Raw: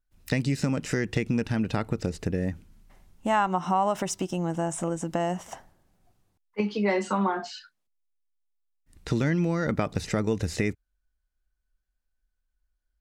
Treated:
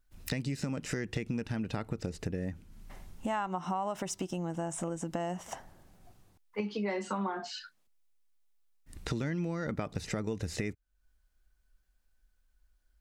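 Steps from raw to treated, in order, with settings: compressor 2.5:1, threshold -47 dBFS, peak gain reduction 18 dB; gain +7.5 dB

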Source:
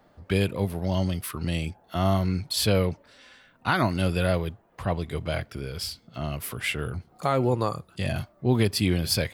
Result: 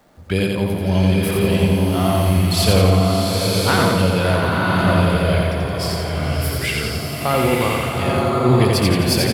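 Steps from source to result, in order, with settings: crackle 540/s -55 dBFS; feedback echo 86 ms, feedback 57%, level -3 dB; bloom reverb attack 1.04 s, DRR -1 dB; gain +4 dB

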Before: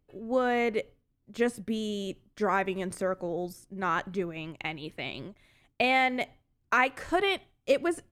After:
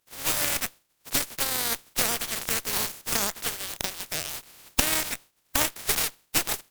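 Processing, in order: spectral contrast lowered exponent 0.1; recorder AGC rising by 18 dB/s; varispeed +21%; added harmonics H 6 -9 dB, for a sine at -2.5 dBFS; gain -1.5 dB

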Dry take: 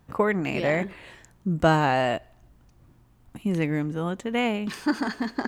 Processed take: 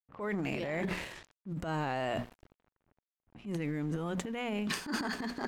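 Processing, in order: notches 60/120/180/240 Hz; crossover distortion -51 dBFS; reverse; compressor 6:1, threshold -32 dBFS, peak gain reduction 16.5 dB; reverse; transient shaper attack -8 dB, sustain +11 dB; low-pass opened by the level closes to 1900 Hz, open at -37 dBFS

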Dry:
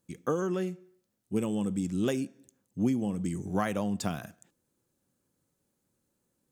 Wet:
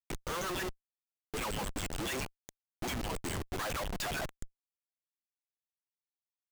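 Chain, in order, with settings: LFO high-pass saw down 7.3 Hz 480–5100 Hz; Schmitt trigger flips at -46 dBFS; gain +6.5 dB

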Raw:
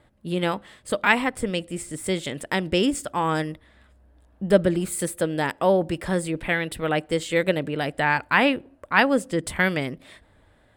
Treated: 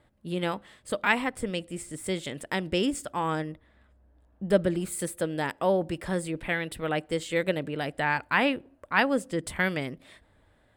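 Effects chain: 3.35–4.5 high shelf 2700 Hz -9 dB; gain -5 dB

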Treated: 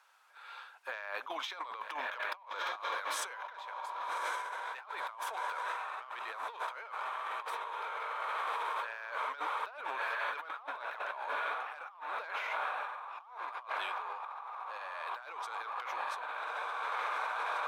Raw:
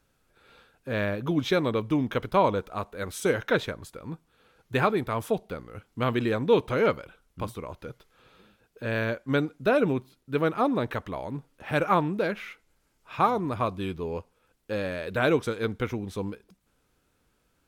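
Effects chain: on a send: diffused feedback echo 1.218 s, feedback 62%, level -8.5 dB; on the sum: overdrive pedal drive 13 dB, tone 3800 Hz, clips at -9 dBFS; ladder high-pass 800 Hz, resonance 50%; negative-ratio compressor -43 dBFS, ratio -1; gain +1.5 dB

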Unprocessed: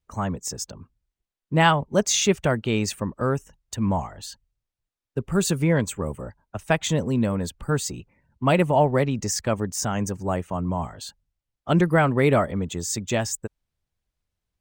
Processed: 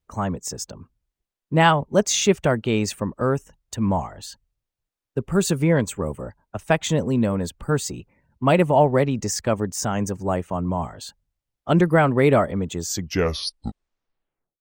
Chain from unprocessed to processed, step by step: tape stop at the end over 1.83 s; bell 460 Hz +3 dB 2.7 oct

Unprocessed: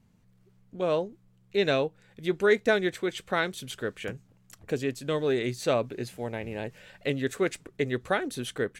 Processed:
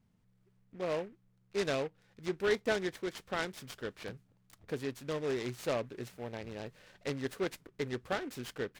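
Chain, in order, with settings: noise-modulated delay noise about 1500 Hz, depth 0.051 ms; gain -8 dB

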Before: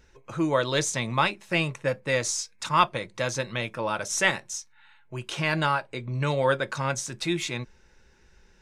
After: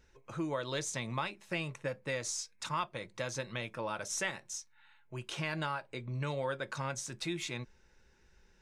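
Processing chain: compressor 3:1, threshold -26 dBFS, peak gain reduction 9.5 dB; gain -7 dB

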